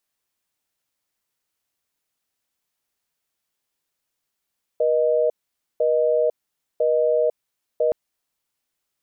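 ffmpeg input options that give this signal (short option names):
-f lavfi -i "aevalsrc='0.112*(sin(2*PI*480*t)+sin(2*PI*620*t))*clip(min(mod(t,1),0.5-mod(t,1))/0.005,0,1)':d=3.12:s=44100"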